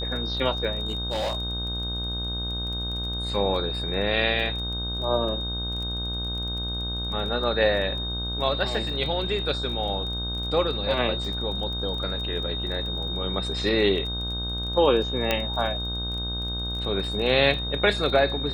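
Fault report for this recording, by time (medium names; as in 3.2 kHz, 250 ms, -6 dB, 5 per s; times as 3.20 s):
buzz 60 Hz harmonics 27 -32 dBFS
crackle 21 per s -33 dBFS
whine 3.7 kHz -30 dBFS
0.86–3.10 s: clipped -23.5 dBFS
15.31 s: pop -8 dBFS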